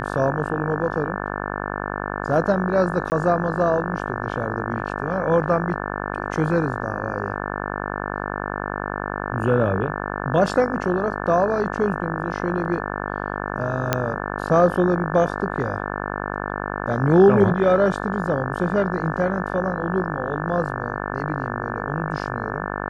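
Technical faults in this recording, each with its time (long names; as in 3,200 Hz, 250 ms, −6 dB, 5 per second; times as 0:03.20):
mains buzz 50 Hz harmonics 35 −28 dBFS
0:03.10–0:03.12: drop-out 19 ms
0:13.93: click −4 dBFS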